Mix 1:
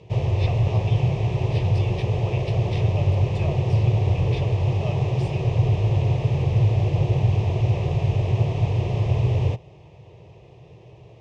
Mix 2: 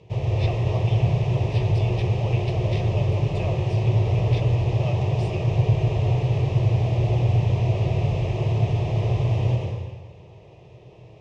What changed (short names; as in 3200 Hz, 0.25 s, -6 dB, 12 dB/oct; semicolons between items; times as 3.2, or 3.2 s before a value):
background -7.0 dB; reverb: on, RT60 1.4 s